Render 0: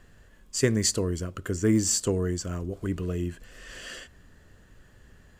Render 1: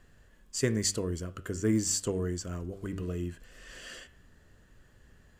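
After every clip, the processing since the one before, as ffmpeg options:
ffmpeg -i in.wav -af "bandreject=frequency=96.92:width_type=h:width=4,bandreject=frequency=193.84:width_type=h:width=4,bandreject=frequency=290.76:width_type=h:width=4,bandreject=frequency=387.68:width_type=h:width=4,bandreject=frequency=484.6:width_type=h:width=4,bandreject=frequency=581.52:width_type=h:width=4,bandreject=frequency=678.44:width_type=h:width=4,bandreject=frequency=775.36:width_type=h:width=4,bandreject=frequency=872.28:width_type=h:width=4,bandreject=frequency=969.2:width_type=h:width=4,bandreject=frequency=1066.12:width_type=h:width=4,bandreject=frequency=1163.04:width_type=h:width=4,bandreject=frequency=1259.96:width_type=h:width=4,bandreject=frequency=1356.88:width_type=h:width=4,bandreject=frequency=1453.8:width_type=h:width=4,bandreject=frequency=1550.72:width_type=h:width=4,bandreject=frequency=1647.64:width_type=h:width=4,bandreject=frequency=1744.56:width_type=h:width=4,bandreject=frequency=1841.48:width_type=h:width=4,bandreject=frequency=1938.4:width_type=h:width=4,bandreject=frequency=2035.32:width_type=h:width=4,bandreject=frequency=2132.24:width_type=h:width=4,bandreject=frequency=2229.16:width_type=h:width=4,bandreject=frequency=2326.08:width_type=h:width=4,bandreject=frequency=2423:width_type=h:width=4,bandreject=frequency=2519.92:width_type=h:width=4,bandreject=frequency=2616.84:width_type=h:width=4,bandreject=frequency=2713.76:width_type=h:width=4,bandreject=frequency=2810.68:width_type=h:width=4,bandreject=frequency=2907.6:width_type=h:width=4,bandreject=frequency=3004.52:width_type=h:width=4,bandreject=frequency=3101.44:width_type=h:width=4,bandreject=frequency=3198.36:width_type=h:width=4,bandreject=frequency=3295.28:width_type=h:width=4,bandreject=frequency=3392.2:width_type=h:width=4,bandreject=frequency=3489.12:width_type=h:width=4,volume=-4.5dB" out.wav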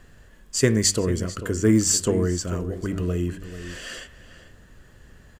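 ffmpeg -i in.wav -filter_complex "[0:a]asplit=2[link_01][link_02];[link_02]adelay=443.1,volume=-12dB,highshelf=frequency=4000:gain=-9.97[link_03];[link_01][link_03]amix=inputs=2:normalize=0,volume=9dB" out.wav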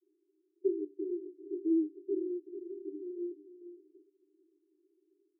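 ffmpeg -i in.wav -af "asuperpass=centerf=350:order=20:qfactor=3.2,volume=-6.5dB" out.wav

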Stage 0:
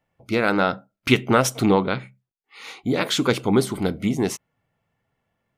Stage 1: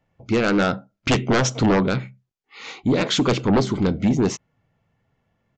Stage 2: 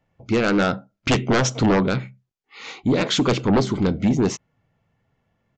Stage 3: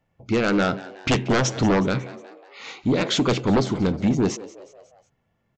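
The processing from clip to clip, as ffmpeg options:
ffmpeg -i in.wav -af "lowshelf=frequency=330:gain=6.5,aresample=16000,aeval=exprs='0.501*sin(PI/2*1.78*val(0)/0.501)':channel_layout=same,aresample=44100,volume=-7dB" out.wav
ffmpeg -i in.wav -af anull out.wav
ffmpeg -i in.wav -filter_complex "[0:a]asplit=5[link_01][link_02][link_03][link_04][link_05];[link_02]adelay=182,afreqshift=92,volume=-18dB[link_06];[link_03]adelay=364,afreqshift=184,volume=-23.7dB[link_07];[link_04]adelay=546,afreqshift=276,volume=-29.4dB[link_08];[link_05]adelay=728,afreqshift=368,volume=-35dB[link_09];[link_01][link_06][link_07][link_08][link_09]amix=inputs=5:normalize=0,volume=-1.5dB" out.wav

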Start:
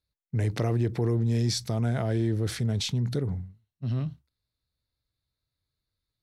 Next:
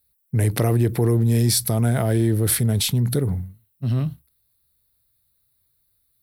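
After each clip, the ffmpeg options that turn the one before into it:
ffmpeg -i in.wav -af "aexciter=amount=10.1:drive=5.3:freq=9100,volume=7dB" out.wav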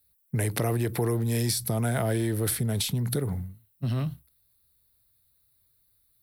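ffmpeg -i in.wav -filter_complex "[0:a]acrossover=split=100|540[link_01][link_02][link_03];[link_01]acompressor=threshold=-40dB:ratio=4[link_04];[link_02]acompressor=threshold=-28dB:ratio=4[link_05];[link_03]acompressor=threshold=-28dB:ratio=4[link_06];[link_04][link_05][link_06]amix=inputs=3:normalize=0" out.wav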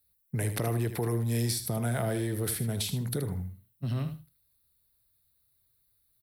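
ffmpeg -i in.wav -af "aecho=1:1:77|154:0.316|0.0538,volume=-4dB" out.wav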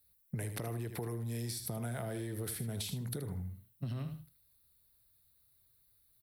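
ffmpeg -i in.wav -af "acompressor=threshold=-37dB:ratio=10,volume=1.5dB" out.wav

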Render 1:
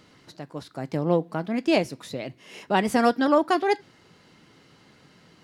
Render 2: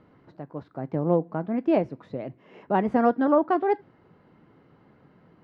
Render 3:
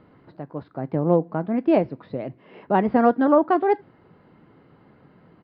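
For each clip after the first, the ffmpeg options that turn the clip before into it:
ffmpeg -i in.wav -af "lowpass=1200" out.wav
ffmpeg -i in.wav -af "aresample=11025,aresample=44100,volume=3.5dB" out.wav

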